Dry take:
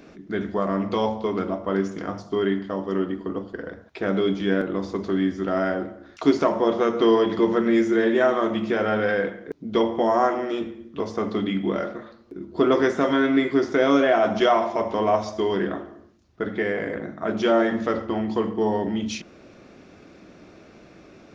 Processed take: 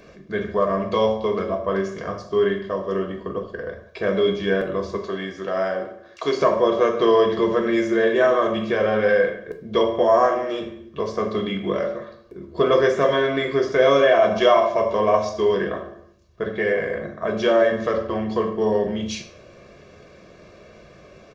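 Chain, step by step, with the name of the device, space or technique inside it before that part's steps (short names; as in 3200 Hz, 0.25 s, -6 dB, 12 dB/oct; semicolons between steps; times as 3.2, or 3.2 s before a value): 4.98–6.4 HPF 350 Hz 6 dB/oct; microphone above a desk (comb 1.8 ms, depth 67%; reverb RT60 0.50 s, pre-delay 9 ms, DRR 6 dB)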